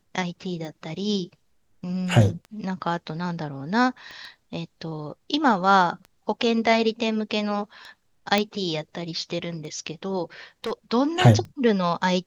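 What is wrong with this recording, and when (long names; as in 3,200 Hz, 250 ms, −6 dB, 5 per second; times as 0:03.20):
scratch tick 33 1/3 rpm −26 dBFS
0:04.11: click −27 dBFS
0:08.38: click −7 dBFS
0:10.64–0:10.72: clipping −24.5 dBFS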